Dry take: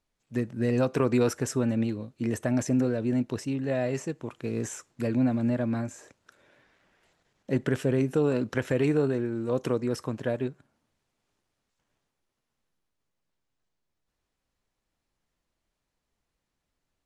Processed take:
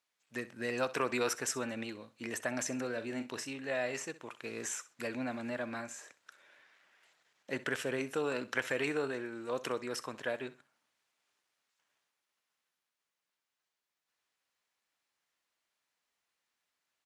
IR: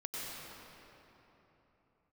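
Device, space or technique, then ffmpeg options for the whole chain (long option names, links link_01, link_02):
filter by subtraction: -filter_complex "[0:a]asettb=1/sr,asplit=3[link_01][link_02][link_03];[link_01]atrim=end=2.924[link_04];[link_02]atrim=start=2.92:end=3.47,asetpts=PTS-STARTPTS,afade=type=in:duration=0.004:curve=qsin,afade=type=out:start_time=0.546:duration=0.004:curve=qsin,asplit=2[link_05][link_06];[link_06]adelay=43,volume=-10dB[link_07];[link_05][link_07]amix=inputs=2:normalize=0,atrim=end_sample=24255[link_08];[link_03]atrim=start=3.466[link_09];[link_04][link_08]acrossfade=duration=0.004:curve1=hsin:curve2=qsin[link_10];[link_10][link_09]acrossfade=duration=0.004:curve1=qsin:curve2=hsin,asplit=2[link_11][link_12];[link_12]lowpass=1800,volume=-1[link_13];[link_11][link_13]amix=inputs=2:normalize=0,aecho=1:1:64|128:0.141|0.0353"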